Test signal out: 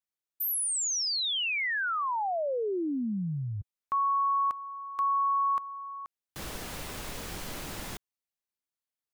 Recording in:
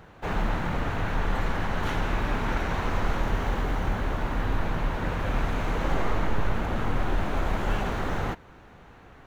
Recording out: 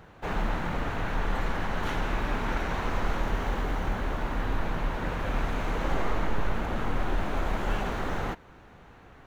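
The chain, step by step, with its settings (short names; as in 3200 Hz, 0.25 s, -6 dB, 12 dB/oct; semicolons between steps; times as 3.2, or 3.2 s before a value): dynamic EQ 100 Hz, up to -4 dB, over -43 dBFS, Q 1.2; gain -1.5 dB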